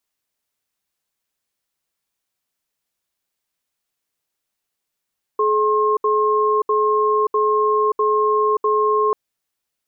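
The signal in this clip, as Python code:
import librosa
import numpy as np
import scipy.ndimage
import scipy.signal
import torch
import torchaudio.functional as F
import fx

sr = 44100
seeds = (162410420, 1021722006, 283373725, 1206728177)

y = fx.cadence(sr, length_s=3.74, low_hz=426.0, high_hz=1070.0, on_s=0.58, off_s=0.07, level_db=-17.0)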